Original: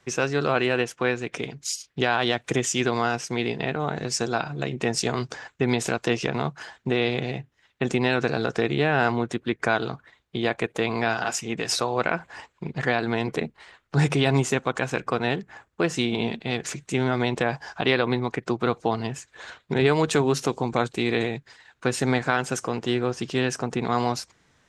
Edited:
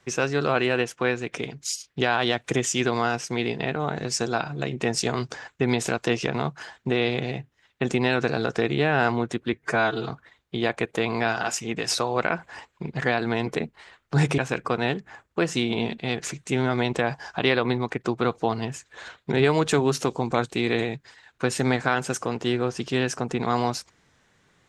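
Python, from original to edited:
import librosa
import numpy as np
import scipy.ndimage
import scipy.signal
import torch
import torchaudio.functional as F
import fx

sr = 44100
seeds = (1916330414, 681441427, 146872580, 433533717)

y = fx.edit(x, sr, fx.stretch_span(start_s=9.53, length_s=0.38, factor=1.5),
    fx.cut(start_s=14.19, length_s=0.61), tone=tone)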